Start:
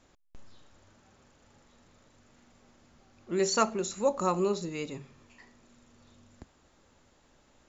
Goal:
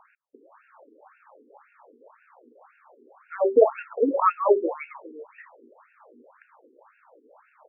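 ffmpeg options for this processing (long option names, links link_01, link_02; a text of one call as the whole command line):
ffmpeg -i in.wav -filter_complex "[0:a]bandreject=frequency=2000:width=23,crystalizer=i=9:c=0,equalizer=frequency=125:width_type=o:width=1:gain=-12,equalizer=frequency=250:width_type=o:width=1:gain=8,equalizer=frequency=500:width_type=o:width=1:gain=10,equalizer=frequency=1000:width_type=o:width=1:gain=9,equalizer=frequency=2000:width_type=o:width=1:gain=-4,equalizer=frequency=4000:width_type=o:width=1:gain=-4,asplit=2[link_01][link_02];[link_02]aecho=0:1:403:0.119[link_03];[link_01][link_03]amix=inputs=2:normalize=0,afftfilt=real='re*between(b*sr/1024,330*pow(2000/330,0.5+0.5*sin(2*PI*1.9*pts/sr))/1.41,330*pow(2000/330,0.5+0.5*sin(2*PI*1.9*pts/sr))*1.41)':imag='im*between(b*sr/1024,330*pow(2000/330,0.5+0.5*sin(2*PI*1.9*pts/sr))/1.41,330*pow(2000/330,0.5+0.5*sin(2*PI*1.9*pts/sr))*1.41)':win_size=1024:overlap=0.75,volume=4dB" out.wav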